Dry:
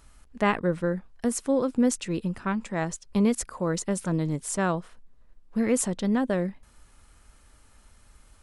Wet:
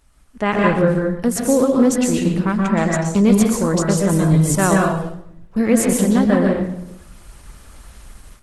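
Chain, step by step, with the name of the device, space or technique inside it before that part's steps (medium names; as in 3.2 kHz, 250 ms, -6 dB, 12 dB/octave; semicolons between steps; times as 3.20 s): speakerphone in a meeting room (reverberation RT60 0.75 s, pre-delay 117 ms, DRR -0.5 dB; level rider gain up to 14 dB; trim -1.5 dB; Opus 16 kbps 48 kHz)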